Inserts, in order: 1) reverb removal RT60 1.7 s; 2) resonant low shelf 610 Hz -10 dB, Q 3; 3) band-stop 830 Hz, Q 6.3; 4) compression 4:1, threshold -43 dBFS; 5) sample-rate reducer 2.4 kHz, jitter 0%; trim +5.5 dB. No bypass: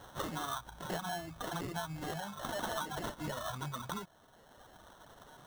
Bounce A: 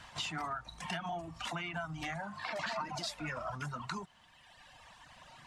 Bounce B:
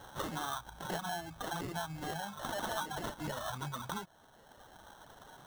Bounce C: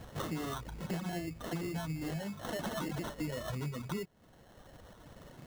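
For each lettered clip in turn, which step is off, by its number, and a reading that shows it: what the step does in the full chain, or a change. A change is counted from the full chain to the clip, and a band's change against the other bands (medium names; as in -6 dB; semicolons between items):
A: 5, 2 kHz band +5.0 dB; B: 3, momentary loudness spread change -1 LU; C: 2, 250 Hz band +8.0 dB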